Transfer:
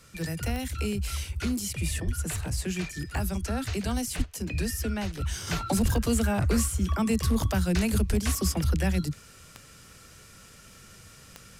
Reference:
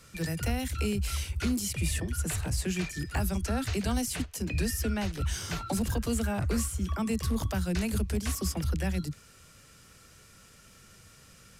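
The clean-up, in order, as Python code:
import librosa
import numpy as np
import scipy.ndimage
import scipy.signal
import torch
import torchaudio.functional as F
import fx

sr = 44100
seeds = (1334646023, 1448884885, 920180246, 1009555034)

y = fx.fix_declick_ar(x, sr, threshold=10.0)
y = fx.fix_deplosive(y, sr, at_s=(2.05, 4.17, 5.82, 8.08))
y = fx.fix_level(y, sr, at_s=5.47, step_db=-4.5)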